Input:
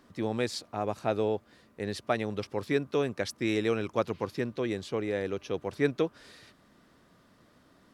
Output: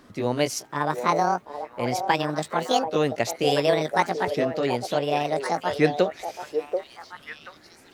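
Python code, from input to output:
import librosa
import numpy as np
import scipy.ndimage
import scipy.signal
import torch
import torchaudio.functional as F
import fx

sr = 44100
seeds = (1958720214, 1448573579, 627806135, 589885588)

y = fx.pitch_ramps(x, sr, semitones=10.5, every_ms=1426)
y = fx.echo_stepped(y, sr, ms=734, hz=570.0, octaves=1.4, feedback_pct=70, wet_db=-4)
y = F.gain(torch.from_numpy(y), 7.5).numpy()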